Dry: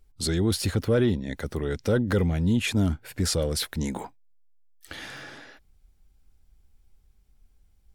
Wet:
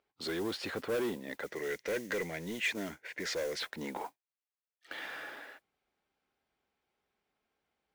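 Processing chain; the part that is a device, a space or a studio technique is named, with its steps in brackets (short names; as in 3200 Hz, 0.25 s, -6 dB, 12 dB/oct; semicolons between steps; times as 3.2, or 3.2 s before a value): carbon microphone (BPF 440–2800 Hz; soft clip -29 dBFS, distortion -9 dB; modulation noise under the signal 19 dB); 1.46–3.6 thirty-one-band EQ 100 Hz -12 dB, 250 Hz -8 dB, 800 Hz -7 dB, 1250 Hz -8 dB, 2000 Hz +10 dB, 6300 Hz +7 dB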